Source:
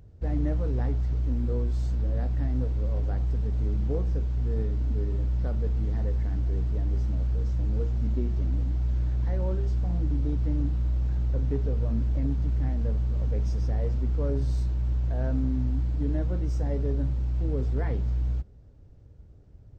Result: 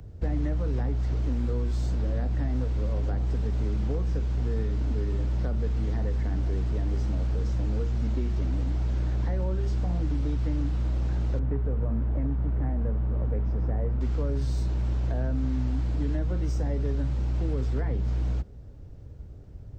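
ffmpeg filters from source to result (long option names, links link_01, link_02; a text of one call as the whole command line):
ffmpeg -i in.wav -filter_complex "[0:a]asettb=1/sr,asplit=3[link_01][link_02][link_03];[link_01]atrim=end=11.394[link_04];[link_02]atrim=start=11.39:end=14.01,asetpts=PTS-STARTPTS,afade=type=in:duration=0.004:curve=qsin,afade=type=out:start_time=2.616:duration=0.004:curve=qsin,lowpass=1400[link_05];[link_03]atrim=start=14.006[link_06];[link_04][link_05]acrossfade=duration=0.004:curve1=hsin:curve2=qsin[link_07];[link_07][link_06]acrossfade=duration=0.004:curve1=qsin:curve2=hsin,acrossover=split=170|370|880[link_08][link_09][link_10][link_11];[link_08]acompressor=threshold=-34dB:ratio=4[link_12];[link_09]acompressor=threshold=-45dB:ratio=4[link_13];[link_10]acompressor=threshold=-50dB:ratio=4[link_14];[link_11]acompressor=threshold=-54dB:ratio=4[link_15];[link_12][link_13][link_14][link_15]amix=inputs=4:normalize=0,volume=7.5dB" out.wav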